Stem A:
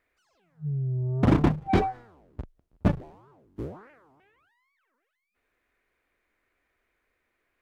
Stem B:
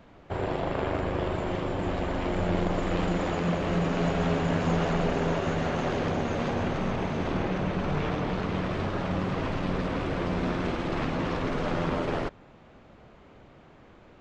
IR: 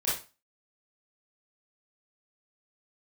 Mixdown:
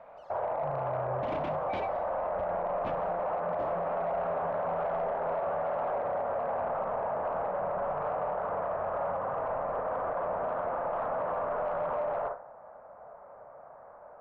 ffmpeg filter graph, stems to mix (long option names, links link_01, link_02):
-filter_complex "[0:a]highshelf=frequency=1800:width_type=q:width=1.5:gain=12.5,alimiter=limit=-20dB:level=0:latency=1:release=58,volume=-5dB[link_01];[1:a]lowpass=frequency=1400:width=0.5412,lowpass=frequency=1400:width=1.3066,lowshelf=frequency=450:width_type=q:width=3:gain=-10,volume=-3dB,asplit=2[link_02][link_03];[link_03]volume=-12.5dB[link_04];[2:a]atrim=start_sample=2205[link_05];[link_04][link_05]afir=irnorm=-1:irlink=0[link_06];[link_01][link_02][link_06]amix=inputs=3:normalize=0,aemphasis=mode=reproduction:type=75kf,asplit=2[link_07][link_08];[link_08]highpass=frequency=720:poles=1,volume=13dB,asoftclip=type=tanh:threshold=-15dB[link_09];[link_07][link_09]amix=inputs=2:normalize=0,lowpass=frequency=1700:poles=1,volume=-6dB,alimiter=level_in=1dB:limit=-24dB:level=0:latency=1:release=43,volume=-1dB"